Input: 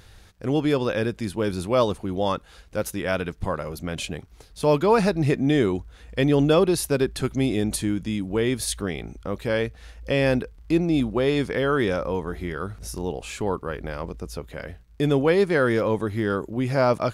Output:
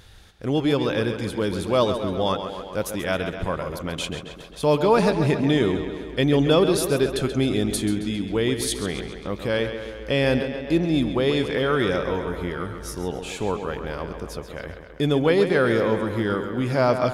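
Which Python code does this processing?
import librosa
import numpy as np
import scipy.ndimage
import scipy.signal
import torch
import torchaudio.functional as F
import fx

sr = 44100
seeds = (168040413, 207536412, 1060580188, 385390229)

p1 = fx.peak_eq(x, sr, hz=3400.0, db=5.0, octaves=0.31)
y = p1 + fx.echo_tape(p1, sr, ms=134, feedback_pct=72, wet_db=-8, lp_hz=5600.0, drive_db=5.0, wow_cents=26, dry=0)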